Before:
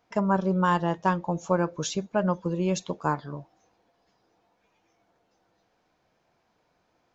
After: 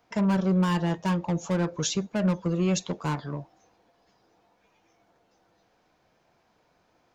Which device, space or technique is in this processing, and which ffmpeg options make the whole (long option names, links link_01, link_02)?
one-band saturation: -filter_complex "[0:a]acrossover=split=290|2100[link_01][link_02][link_03];[link_02]asoftclip=type=tanh:threshold=-33.5dB[link_04];[link_01][link_04][link_03]amix=inputs=3:normalize=0,volume=3.5dB"